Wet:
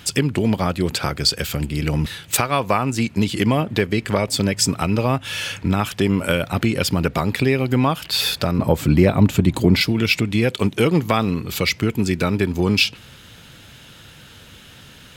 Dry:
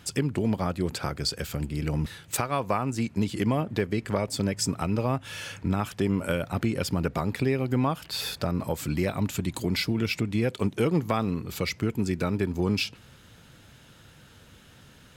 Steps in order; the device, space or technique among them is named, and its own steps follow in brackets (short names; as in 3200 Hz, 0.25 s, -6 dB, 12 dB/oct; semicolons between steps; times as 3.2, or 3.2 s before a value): presence and air boost (bell 3100 Hz +6 dB 1.4 oct; high shelf 12000 Hz +6.5 dB); 8.58–9.81 tilt shelf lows +6.5 dB, about 1400 Hz; gain +7 dB